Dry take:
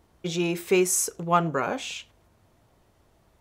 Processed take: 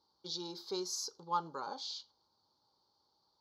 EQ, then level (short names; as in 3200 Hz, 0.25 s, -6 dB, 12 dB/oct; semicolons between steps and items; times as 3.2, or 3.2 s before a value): double band-pass 1900 Hz, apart 2.5 oct; fixed phaser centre 2600 Hz, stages 6; +7.0 dB